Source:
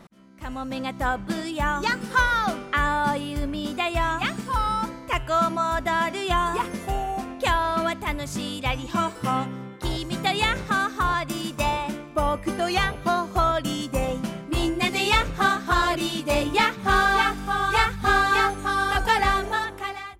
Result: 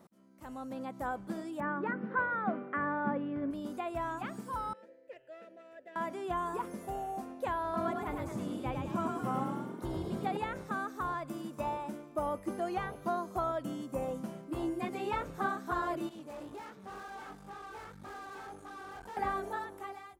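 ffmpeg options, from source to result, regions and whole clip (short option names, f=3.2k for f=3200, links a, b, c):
-filter_complex "[0:a]asettb=1/sr,asplit=3[a][b][c];[a]atrim=end=1.604[d];[b]atrim=start=1.6:end=3.51,asetpts=PTS-STARTPTS,afade=t=in:d=0.004:c=qsin,afade=t=out:st=1.906:d=0.004:c=qsin,acontrast=72,highpass=f=110:w=0.5412,highpass=f=110:w=1.3066,equalizer=f=130:t=q:w=4:g=-8,equalizer=f=370:t=q:w=4:g=-4,equalizer=f=550:t=q:w=4:g=-4,equalizer=f=890:t=q:w=4:g=-8,equalizer=f=1.3k:t=q:w=4:g=-4,lowpass=f=2k:w=0.5412,lowpass=f=2k:w=1.3066[e];[c]atrim=start=3.506[f];[d][e]acrossfade=d=0.004:c1=hsin:c2=qsin[g];[g][f]acrossfade=d=0.004:c1=qsin:c2=hsin,asettb=1/sr,asplit=3[h][i][j];[h]atrim=end=4.734[k];[i]atrim=start=4.73:end=5.96,asetpts=PTS-STARTPTS,afade=t=in:d=0.004:c=qsin,afade=t=out:st=1.226:d=0.004:c=qsin,aeval=exprs='clip(val(0),-1,0.0794)':c=same,asplit=3[l][m][n];[l]bandpass=f=530:t=q:w=8,volume=0dB[o];[m]bandpass=f=1.84k:t=q:w=8,volume=-6dB[p];[n]bandpass=f=2.48k:t=q:w=8,volume=-9dB[q];[o][p][q]amix=inputs=3:normalize=0[r];[j]atrim=start=5.956[s];[k][r]acrossfade=d=0.004:c1=hsin:c2=qsin[t];[t][s]acrossfade=d=0.004:c1=qsin:c2=hsin,asettb=1/sr,asplit=3[u][v][w];[u]atrim=end=7.634[x];[v]atrim=start=7.63:end=10.37,asetpts=PTS-STARTPTS,afade=t=in:d=0.004:c=qsin,afade=t=out:st=2.736:d=0.004:c=qsin,lowshelf=f=160:g=7,asplit=8[y][z][aa][ab][ac][ad][ae][af];[z]adelay=106,afreqshift=42,volume=-4dB[ag];[aa]adelay=212,afreqshift=84,volume=-9.8dB[ah];[ab]adelay=318,afreqshift=126,volume=-15.7dB[ai];[ac]adelay=424,afreqshift=168,volume=-21.5dB[aj];[ad]adelay=530,afreqshift=210,volume=-27.4dB[ak];[ae]adelay=636,afreqshift=252,volume=-33.2dB[al];[af]adelay=742,afreqshift=294,volume=-39.1dB[am];[y][ag][ah][ai][aj][ak][al][am]amix=inputs=8:normalize=0,atrim=end_sample=120834[an];[w]atrim=start=10.366[ao];[x][an]acrossfade=d=0.004:c1=hsin:c2=qsin[ap];[ap][ao]acrossfade=d=0.004:c1=qsin:c2=hsin,asettb=1/sr,asplit=3[aq][ar][as];[aq]atrim=end=16.094[at];[ar]atrim=start=16.09:end=19.17,asetpts=PTS-STARTPTS,afade=t=in:d=0.004:c=qsin,afade=t=out:st=3.076:d=0.004:c=qsin,flanger=delay=16.5:depth=5.5:speed=1.9,aeval=exprs='(tanh(35.5*val(0)+0.7)-tanh(0.7))/35.5':c=same,highshelf=f=10k:g=-10.5[au];[as]atrim=start=19.166[av];[at][au]acrossfade=d=0.004:c1=hsin:c2=qsin[aw];[aw][av]acrossfade=d=0.004:c1=qsin:c2=hsin,acrossover=split=2500[ax][ay];[ay]acompressor=threshold=-45dB:ratio=4:attack=1:release=60[az];[ax][az]amix=inputs=2:normalize=0,highpass=f=430:p=1,equalizer=f=2.7k:w=0.4:g=-14.5,volume=-3dB"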